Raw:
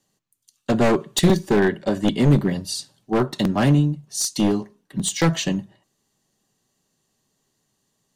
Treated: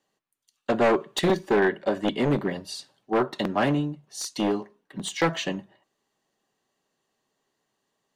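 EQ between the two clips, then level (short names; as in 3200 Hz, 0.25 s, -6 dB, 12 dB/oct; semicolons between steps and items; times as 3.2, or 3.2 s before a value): tone controls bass -14 dB, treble -12 dB; 0.0 dB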